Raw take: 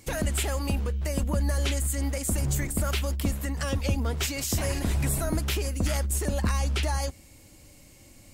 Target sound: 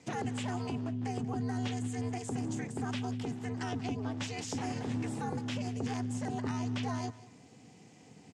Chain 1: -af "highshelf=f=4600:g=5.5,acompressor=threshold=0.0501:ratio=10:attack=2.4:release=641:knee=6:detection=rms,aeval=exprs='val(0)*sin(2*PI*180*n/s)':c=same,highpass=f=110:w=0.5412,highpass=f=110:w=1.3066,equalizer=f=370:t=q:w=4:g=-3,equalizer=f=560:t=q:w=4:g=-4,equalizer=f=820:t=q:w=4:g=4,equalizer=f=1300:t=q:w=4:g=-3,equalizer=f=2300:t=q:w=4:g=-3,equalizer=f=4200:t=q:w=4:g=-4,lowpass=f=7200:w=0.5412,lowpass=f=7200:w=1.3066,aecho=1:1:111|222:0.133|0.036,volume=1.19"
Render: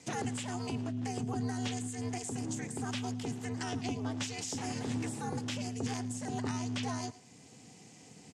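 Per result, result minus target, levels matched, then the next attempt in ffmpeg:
echo 76 ms early; 8 kHz band +6.0 dB
-af "highshelf=f=4600:g=5.5,acompressor=threshold=0.0501:ratio=10:attack=2.4:release=641:knee=6:detection=rms,aeval=exprs='val(0)*sin(2*PI*180*n/s)':c=same,highpass=f=110:w=0.5412,highpass=f=110:w=1.3066,equalizer=f=370:t=q:w=4:g=-3,equalizer=f=560:t=q:w=4:g=-4,equalizer=f=820:t=q:w=4:g=4,equalizer=f=1300:t=q:w=4:g=-3,equalizer=f=2300:t=q:w=4:g=-3,equalizer=f=4200:t=q:w=4:g=-4,lowpass=f=7200:w=0.5412,lowpass=f=7200:w=1.3066,aecho=1:1:187|374:0.133|0.036,volume=1.19"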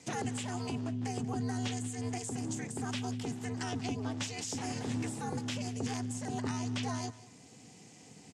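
8 kHz band +6.0 dB
-af "highshelf=f=4600:g=-6,acompressor=threshold=0.0501:ratio=10:attack=2.4:release=641:knee=6:detection=rms,aeval=exprs='val(0)*sin(2*PI*180*n/s)':c=same,highpass=f=110:w=0.5412,highpass=f=110:w=1.3066,equalizer=f=370:t=q:w=4:g=-3,equalizer=f=560:t=q:w=4:g=-4,equalizer=f=820:t=q:w=4:g=4,equalizer=f=1300:t=q:w=4:g=-3,equalizer=f=2300:t=q:w=4:g=-3,equalizer=f=4200:t=q:w=4:g=-4,lowpass=f=7200:w=0.5412,lowpass=f=7200:w=1.3066,aecho=1:1:187|374:0.133|0.036,volume=1.19"

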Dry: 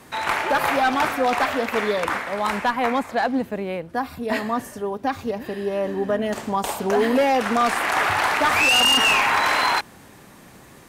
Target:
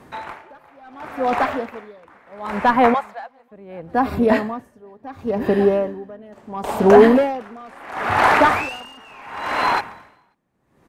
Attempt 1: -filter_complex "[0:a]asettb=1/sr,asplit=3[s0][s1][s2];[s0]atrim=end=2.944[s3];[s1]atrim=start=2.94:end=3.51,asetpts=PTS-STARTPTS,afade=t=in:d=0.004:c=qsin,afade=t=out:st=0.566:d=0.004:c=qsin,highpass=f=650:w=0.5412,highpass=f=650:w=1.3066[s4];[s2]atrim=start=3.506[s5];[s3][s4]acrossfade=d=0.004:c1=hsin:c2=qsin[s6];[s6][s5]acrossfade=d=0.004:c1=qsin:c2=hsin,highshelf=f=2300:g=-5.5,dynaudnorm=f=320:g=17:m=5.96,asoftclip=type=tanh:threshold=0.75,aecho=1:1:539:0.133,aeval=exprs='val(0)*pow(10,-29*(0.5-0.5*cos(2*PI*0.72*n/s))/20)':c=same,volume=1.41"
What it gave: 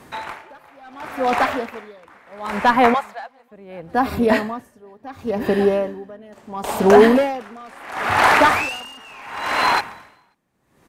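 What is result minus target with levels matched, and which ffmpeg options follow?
4 kHz band +4.5 dB
-filter_complex "[0:a]asettb=1/sr,asplit=3[s0][s1][s2];[s0]atrim=end=2.944[s3];[s1]atrim=start=2.94:end=3.51,asetpts=PTS-STARTPTS,afade=t=in:d=0.004:c=qsin,afade=t=out:st=0.566:d=0.004:c=qsin,highpass=f=650:w=0.5412,highpass=f=650:w=1.3066[s4];[s2]atrim=start=3.506[s5];[s3][s4]acrossfade=d=0.004:c1=hsin:c2=qsin[s6];[s6][s5]acrossfade=d=0.004:c1=qsin:c2=hsin,highshelf=f=2300:g=-14,dynaudnorm=f=320:g=17:m=5.96,asoftclip=type=tanh:threshold=0.75,aecho=1:1:539:0.133,aeval=exprs='val(0)*pow(10,-29*(0.5-0.5*cos(2*PI*0.72*n/s))/20)':c=same,volume=1.41"

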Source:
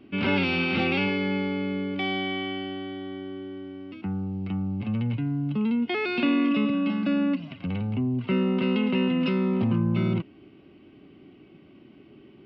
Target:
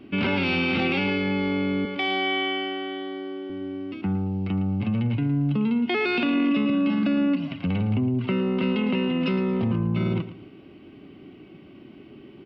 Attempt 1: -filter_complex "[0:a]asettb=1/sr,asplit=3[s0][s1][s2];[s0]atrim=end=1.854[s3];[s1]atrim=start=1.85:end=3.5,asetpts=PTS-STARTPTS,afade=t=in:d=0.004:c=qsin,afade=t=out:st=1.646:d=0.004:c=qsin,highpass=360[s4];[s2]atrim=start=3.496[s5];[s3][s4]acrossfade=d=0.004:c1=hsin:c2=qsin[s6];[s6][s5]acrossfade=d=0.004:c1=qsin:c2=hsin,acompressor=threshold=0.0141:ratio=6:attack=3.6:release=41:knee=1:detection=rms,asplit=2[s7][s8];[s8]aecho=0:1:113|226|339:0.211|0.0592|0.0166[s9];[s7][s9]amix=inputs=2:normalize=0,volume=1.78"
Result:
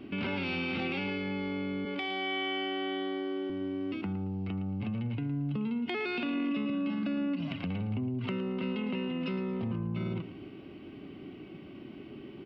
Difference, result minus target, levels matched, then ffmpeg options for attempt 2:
compression: peak gain reduction +9.5 dB
-filter_complex "[0:a]asettb=1/sr,asplit=3[s0][s1][s2];[s0]atrim=end=1.854[s3];[s1]atrim=start=1.85:end=3.5,asetpts=PTS-STARTPTS,afade=t=in:d=0.004:c=qsin,afade=t=out:st=1.646:d=0.004:c=qsin,highpass=360[s4];[s2]atrim=start=3.496[s5];[s3][s4]acrossfade=d=0.004:c1=hsin:c2=qsin[s6];[s6][s5]acrossfade=d=0.004:c1=qsin:c2=hsin,acompressor=threshold=0.0531:ratio=6:attack=3.6:release=41:knee=1:detection=rms,asplit=2[s7][s8];[s8]aecho=0:1:113|226|339:0.211|0.0592|0.0166[s9];[s7][s9]amix=inputs=2:normalize=0,volume=1.78"

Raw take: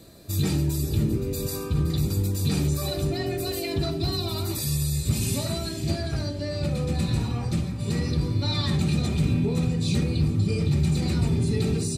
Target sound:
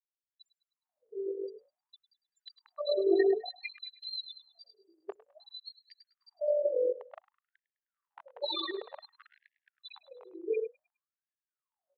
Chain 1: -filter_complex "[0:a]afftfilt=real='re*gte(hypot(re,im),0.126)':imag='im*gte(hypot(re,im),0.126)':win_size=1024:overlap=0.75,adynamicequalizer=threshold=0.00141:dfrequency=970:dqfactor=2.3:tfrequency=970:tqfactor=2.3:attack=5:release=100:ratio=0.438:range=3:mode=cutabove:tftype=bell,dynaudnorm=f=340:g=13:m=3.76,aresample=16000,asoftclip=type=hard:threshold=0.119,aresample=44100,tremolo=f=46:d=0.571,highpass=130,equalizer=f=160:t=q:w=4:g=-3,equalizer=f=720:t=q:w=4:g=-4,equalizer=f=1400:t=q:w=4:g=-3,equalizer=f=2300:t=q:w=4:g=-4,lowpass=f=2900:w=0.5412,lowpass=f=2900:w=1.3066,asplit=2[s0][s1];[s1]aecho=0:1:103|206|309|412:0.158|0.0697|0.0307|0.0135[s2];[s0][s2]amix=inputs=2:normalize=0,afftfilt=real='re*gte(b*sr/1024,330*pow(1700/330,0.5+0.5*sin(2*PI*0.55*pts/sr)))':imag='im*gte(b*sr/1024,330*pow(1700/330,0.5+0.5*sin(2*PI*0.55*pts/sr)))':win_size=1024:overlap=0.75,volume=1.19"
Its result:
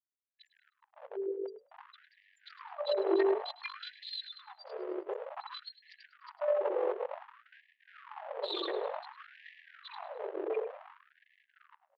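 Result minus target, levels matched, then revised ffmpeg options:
hard clipper: distortion +18 dB
-filter_complex "[0:a]afftfilt=real='re*gte(hypot(re,im),0.126)':imag='im*gte(hypot(re,im),0.126)':win_size=1024:overlap=0.75,adynamicequalizer=threshold=0.00141:dfrequency=970:dqfactor=2.3:tfrequency=970:tqfactor=2.3:attack=5:release=100:ratio=0.438:range=3:mode=cutabove:tftype=bell,dynaudnorm=f=340:g=13:m=3.76,aresample=16000,asoftclip=type=hard:threshold=0.422,aresample=44100,tremolo=f=46:d=0.571,highpass=130,equalizer=f=160:t=q:w=4:g=-3,equalizer=f=720:t=q:w=4:g=-4,equalizer=f=1400:t=q:w=4:g=-3,equalizer=f=2300:t=q:w=4:g=-4,lowpass=f=2900:w=0.5412,lowpass=f=2900:w=1.3066,asplit=2[s0][s1];[s1]aecho=0:1:103|206|309|412:0.158|0.0697|0.0307|0.0135[s2];[s0][s2]amix=inputs=2:normalize=0,afftfilt=real='re*gte(b*sr/1024,330*pow(1700/330,0.5+0.5*sin(2*PI*0.55*pts/sr)))':imag='im*gte(b*sr/1024,330*pow(1700/330,0.5+0.5*sin(2*PI*0.55*pts/sr)))':win_size=1024:overlap=0.75,volume=1.19"

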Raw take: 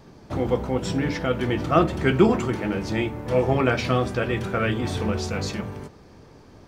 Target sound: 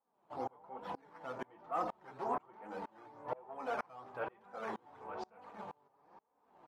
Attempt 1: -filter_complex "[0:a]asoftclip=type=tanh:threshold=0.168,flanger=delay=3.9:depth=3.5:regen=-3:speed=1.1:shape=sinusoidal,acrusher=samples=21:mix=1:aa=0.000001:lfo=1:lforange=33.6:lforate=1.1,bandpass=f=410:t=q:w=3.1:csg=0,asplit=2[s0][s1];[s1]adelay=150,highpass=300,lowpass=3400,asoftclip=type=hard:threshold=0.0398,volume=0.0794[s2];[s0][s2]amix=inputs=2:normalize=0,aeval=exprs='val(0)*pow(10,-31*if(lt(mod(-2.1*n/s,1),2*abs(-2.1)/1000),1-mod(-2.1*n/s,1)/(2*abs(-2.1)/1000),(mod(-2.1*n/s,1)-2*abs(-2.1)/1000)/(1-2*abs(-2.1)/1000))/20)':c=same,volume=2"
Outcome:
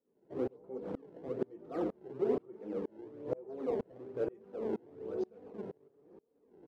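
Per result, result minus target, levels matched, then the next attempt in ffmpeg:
1 kHz band -14.5 dB; decimation with a swept rate: distortion +7 dB
-filter_complex "[0:a]asoftclip=type=tanh:threshold=0.168,flanger=delay=3.9:depth=3.5:regen=-3:speed=1.1:shape=sinusoidal,acrusher=samples=21:mix=1:aa=0.000001:lfo=1:lforange=33.6:lforate=1.1,bandpass=f=880:t=q:w=3.1:csg=0,asplit=2[s0][s1];[s1]adelay=150,highpass=300,lowpass=3400,asoftclip=type=hard:threshold=0.0398,volume=0.0794[s2];[s0][s2]amix=inputs=2:normalize=0,aeval=exprs='val(0)*pow(10,-31*if(lt(mod(-2.1*n/s,1),2*abs(-2.1)/1000),1-mod(-2.1*n/s,1)/(2*abs(-2.1)/1000),(mod(-2.1*n/s,1)-2*abs(-2.1)/1000)/(1-2*abs(-2.1)/1000))/20)':c=same,volume=2"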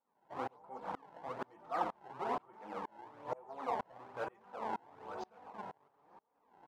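decimation with a swept rate: distortion +7 dB
-filter_complex "[0:a]asoftclip=type=tanh:threshold=0.168,flanger=delay=3.9:depth=3.5:regen=-3:speed=1.1:shape=sinusoidal,acrusher=samples=7:mix=1:aa=0.000001:lfo=1:lforange=11.2:lforate=1.1,bandpass=f=880:t=q:w=3.1:csg=0,asplit=2[s0][s1];[s1]adelay=150,highpass=300,lowpass=3400,asoftclip=type=hard:threshold=0.0398,volume=0.0794[s2];[s0][s2]amix=inputs=2:normalize=0,aeval=exprs='val(0)*pow(10,-31*if(lt(mod(-2.1*n/s,1),2*abs(-2.1)/1000),1-mod(-2.1*n/s,1)/(2*abs(-2.1)/1000),(mod(-2.1*n/s,1)-2*abs(-2.1)/1000)/(1-2*abs(-2.1)/1000))/20)':c=same,volume=2"

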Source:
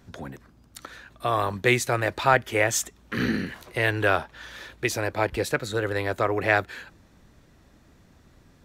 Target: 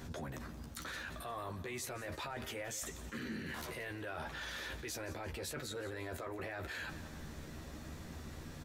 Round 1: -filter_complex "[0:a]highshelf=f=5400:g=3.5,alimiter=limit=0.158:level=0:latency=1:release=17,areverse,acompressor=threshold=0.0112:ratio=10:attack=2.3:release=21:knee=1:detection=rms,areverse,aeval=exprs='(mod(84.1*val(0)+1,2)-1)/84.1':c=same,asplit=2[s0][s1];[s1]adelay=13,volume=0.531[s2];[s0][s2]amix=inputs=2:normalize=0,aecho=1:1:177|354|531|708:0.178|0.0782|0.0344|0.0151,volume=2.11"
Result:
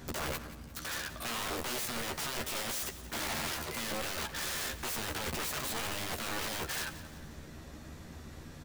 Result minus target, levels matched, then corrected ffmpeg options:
compression: peak gain reduction -8.5 dB
-filter_complex "[0:a]highshelf=f=5400:g=3.5,alimiter=limit=0.158:level=0:latency=1:release=17,areverse,acompressor=threshold=0.00376:ratio=10:attack=2.3:release=21:knee=1:detection=rms,areverse,aeval=exprs='(mod(84.1*val(0)+1,2)-1)/84.1':c=same,asplit=2[s0][s1];[s1]adelay=13,volume=0.531[s2];[s0][s2]amix=inputs=2:normalize=0,aecho=1:1:177|354|531|708:0.178|0.0782|0.0344|0.0151,volume=2.11"

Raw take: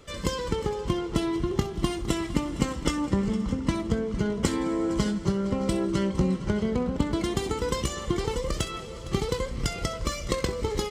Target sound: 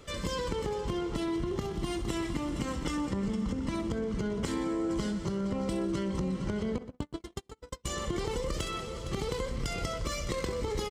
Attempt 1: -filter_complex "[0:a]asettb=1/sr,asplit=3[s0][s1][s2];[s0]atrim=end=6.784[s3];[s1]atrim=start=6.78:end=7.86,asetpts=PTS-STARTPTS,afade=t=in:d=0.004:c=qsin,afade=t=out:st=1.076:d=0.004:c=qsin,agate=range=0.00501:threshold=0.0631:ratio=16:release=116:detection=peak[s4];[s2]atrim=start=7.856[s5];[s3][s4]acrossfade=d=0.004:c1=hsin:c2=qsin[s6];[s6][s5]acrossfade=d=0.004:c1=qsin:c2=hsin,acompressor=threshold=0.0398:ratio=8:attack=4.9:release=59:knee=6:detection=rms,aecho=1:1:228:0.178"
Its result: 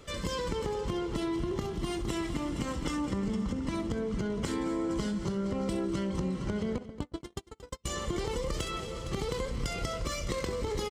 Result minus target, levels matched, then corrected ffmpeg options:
echo 105 ms late
-filter_complex "[0:a]asettb=1/sr,asplit=3[s0][s1][s2];[s0]atrim=end=6.784[s3];[s1]atrim=start=6.78:end=7.86,asetpts=PTS-STARTPTS,afade=t=in:d=0.004:c=qsin,afade=t=out:st=1.076:d=0.004:c=qsin,agate=range=0.00501:threshold=0.0631:ratio=16:release=116:detection=peak[s4];[s2]atrim=start=7.856[s5];[s3][s4]acrossfade=d=0.004:c1=hsin:c2=qsin[s6];[s6][s5]acrossfade=d=0.004:c1=qsin:c2=hsin,acompressor=threshold=0.0398:ratio=8:attack=4.9:release=59:knee=6:detection=rms,aecho=1:1:123:0.178"

